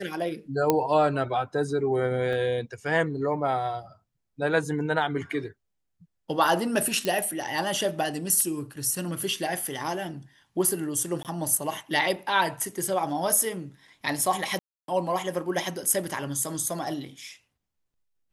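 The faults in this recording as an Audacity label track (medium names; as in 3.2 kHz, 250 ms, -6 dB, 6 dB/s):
0.700000	0.700000	pop -7 dBFS
2.330000	2.330000	dropout 2.2 ms
7.050000	7.050000	pop -13 dBFS
11.230000	11.250000	dropout 18 ms
14.590000	14.880000	dropout 292 ms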